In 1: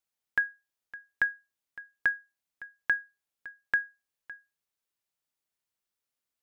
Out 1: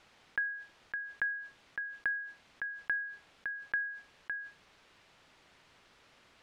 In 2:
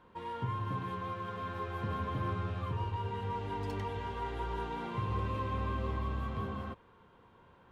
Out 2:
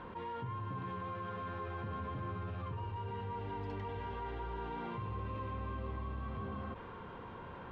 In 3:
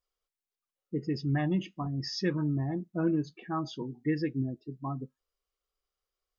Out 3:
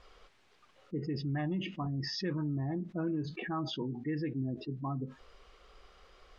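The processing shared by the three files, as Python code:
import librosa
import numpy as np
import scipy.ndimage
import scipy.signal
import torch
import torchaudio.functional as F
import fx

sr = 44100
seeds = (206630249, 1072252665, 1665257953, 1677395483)

y = scipy.signal.sosfilt(scipy.signal.butter(2, 3100.0, 'lowpass', fs=sr, output='sos'), x)
y = fx.env_flatten(y, sr, amount_pct=70)
y = y * 10.0 ** (-7.5 / 20.0)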